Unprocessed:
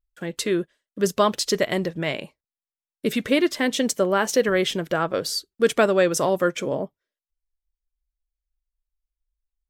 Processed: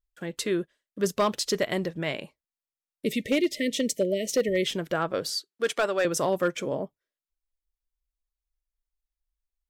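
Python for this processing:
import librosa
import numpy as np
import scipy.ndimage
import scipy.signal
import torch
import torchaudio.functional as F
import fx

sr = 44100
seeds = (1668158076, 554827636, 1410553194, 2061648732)

y = fx.spec_erase(x, sr, start_s=3.05, length_s=1.61, low_hz=650.0, high_hz=1800.0)
y = fx.weighting(y, sr, curve='A', at=(5.3, 6.05))
y = np.clip(y, -10.0 ** (-12.5 / 20.0), 10.0 ** (-12.5 / 20.0))
y = F.gain(torch.from_numpy(y), -4.0).numpy()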